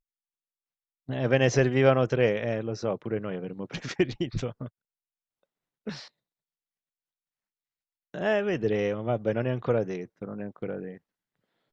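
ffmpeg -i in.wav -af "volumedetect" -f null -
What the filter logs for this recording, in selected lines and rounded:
mean_volume: -29.7 dB
max_volume: -6.7 dB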